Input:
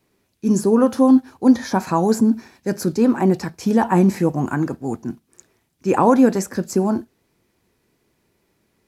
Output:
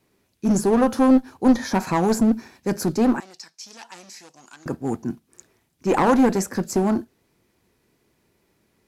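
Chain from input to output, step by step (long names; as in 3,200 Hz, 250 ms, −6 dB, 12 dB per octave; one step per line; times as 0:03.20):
asymmetric clip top −16.5 dBFS
0:03.20–0:04.66: resonant band-pass 5,400 Hz, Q 1.9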